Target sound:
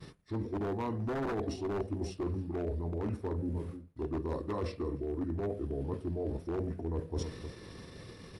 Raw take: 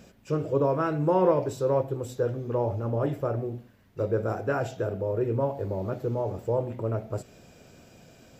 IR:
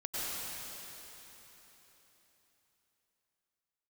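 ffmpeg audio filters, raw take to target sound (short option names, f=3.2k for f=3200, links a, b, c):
-filter_complex "[0:a]agate=range=-33dB:threshold=-49dB:ratio=3:detection=peak,asplit=2[a][b];[b]adelay=303.2,volume=-19dB,highshelf=f=4k:g=-6.82[c];[a][c]amix=inputs=2:normalize=0,aeval=exprs='0.1*(abs(mod(val(0)/0.1+3,4)-2)-1)':c=same,asetrate=32097,aresample=44100,atempo=1.37395,areverse,acompressor=threshold=-39dB:ratio=12,areverse,volume=7dB"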